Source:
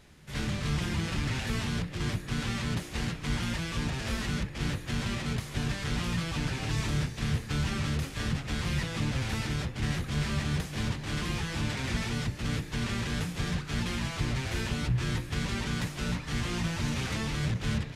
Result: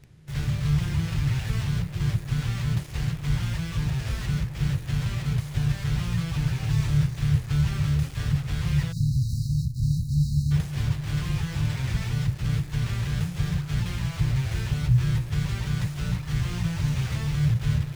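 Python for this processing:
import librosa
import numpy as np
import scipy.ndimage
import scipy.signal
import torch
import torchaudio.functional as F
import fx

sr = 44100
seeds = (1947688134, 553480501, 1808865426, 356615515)

p1 = fx.dmg_noise_band(x, sr, seeds[0], low_hz=40.0, high_hz=380.0, level_db=-55.0)
p2 = fx.low_shelf_res(p1, sr, hz=180.0, db=7.0, q=3.0)
p3 = fx.quant_dither(p2, sr, seeds[1], bits=6, dither='none')
p4 = p2 + (p3 * librosa.db_to_amplitude(-5.0))
p5 = fx.spec_erase(p4, sr, start_s=8.92, length_s=1.59, low_hz=290.0, high_hz=3800.0)
y = p5 * librosa.db_to_amplitude(-6.5)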